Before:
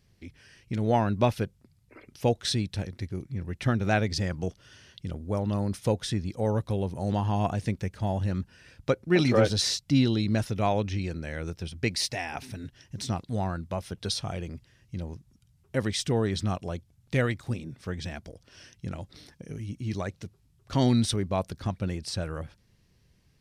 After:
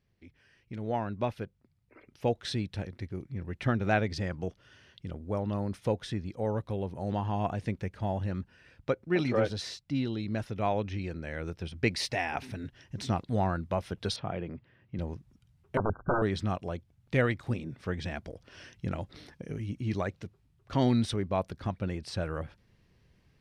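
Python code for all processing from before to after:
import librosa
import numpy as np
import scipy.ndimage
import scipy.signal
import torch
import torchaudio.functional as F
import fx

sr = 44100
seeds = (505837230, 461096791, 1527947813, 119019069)

y = fx.chain(x, sr, fx.highpass(hz=120.0, slope=12),
    fx.air_absorb(metres=340.0), at=(14.16, 14.99))
y = fx.chain(y, sr, fx.low_shelf(hz=85.0, db=10.0),
    fx.overflow_wrap(gain_db=19.5),
    fx.brickwall_lowpass(high_hz=1600.0), at=(15.77, 16.22))
y = fx.bass_treble(y, sr, bass_db=-3, treble_db=-11)
y = fx.rider(y, sr, range_db=10, speed_s=2.0)
y = y * 10.0 ** (-3.0 / 20.0)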